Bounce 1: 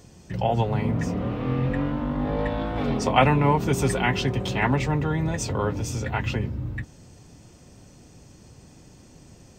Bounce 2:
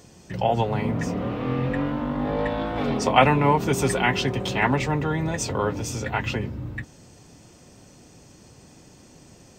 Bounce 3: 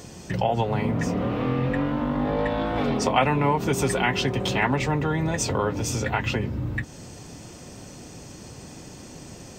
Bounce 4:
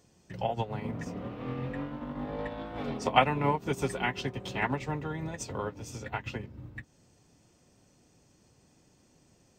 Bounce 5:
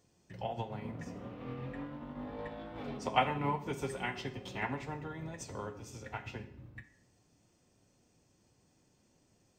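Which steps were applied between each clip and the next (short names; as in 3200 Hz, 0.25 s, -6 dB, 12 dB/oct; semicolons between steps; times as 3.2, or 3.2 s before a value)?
low shelf 140 Hz -8.5 dB; gain +2.5 dB
compressor 2:1, threshold -35 dBFS, peak gain reduction 13 dB; gain +8 dB
upward expander 2.5:1, over -31 dBFS
reverb RT60 0.65 s, pre-delay 5 ms, DRR 8 dB; gain -7 dB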